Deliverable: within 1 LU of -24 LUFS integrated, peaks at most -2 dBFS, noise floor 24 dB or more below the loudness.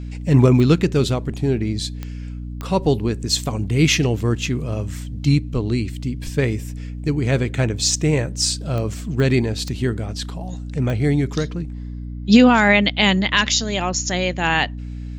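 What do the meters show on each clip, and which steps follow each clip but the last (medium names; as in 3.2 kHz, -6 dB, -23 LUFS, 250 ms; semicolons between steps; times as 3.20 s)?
clicks found 7; hum 60 Hz; highest harmonic 300 Hz; hum level -27 dBFS; loudness -19.5 LUFS; peak level -1.5 dBFS; loudness target -24.0 LUFS
-> de-click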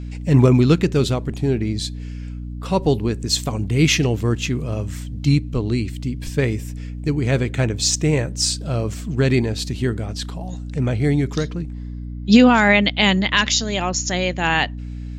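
clicks found 0; hum 60 Hz; highest harmonic 300 Hz; hum level -27 dBFS
-> hum notches 60/120/180/240/300 Hz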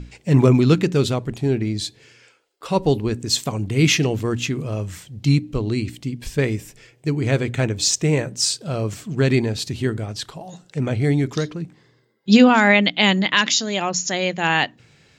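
hum not found; loudness -20.0 LUFS; peak level -2.0 dBFS; loudness target -24.0 LUFS
-> trim -4 dB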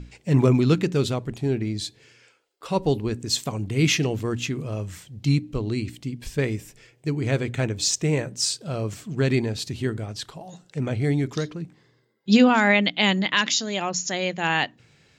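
loudness -24.0 LUFS; peak level -6.0 dBFS; noise floor -62 dBFS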